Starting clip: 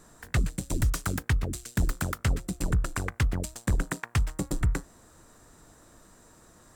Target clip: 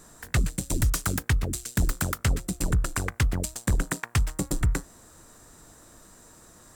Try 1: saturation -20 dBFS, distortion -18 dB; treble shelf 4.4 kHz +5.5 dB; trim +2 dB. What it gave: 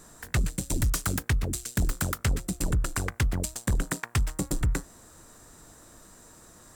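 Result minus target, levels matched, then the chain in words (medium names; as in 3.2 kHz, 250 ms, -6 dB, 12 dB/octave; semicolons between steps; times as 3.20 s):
saturation: distortion +14 dB
saturation -11.5 dBFS, distortion -32 dB; treble shelf 4.4 kHz +5.5 dB; trim +2 dB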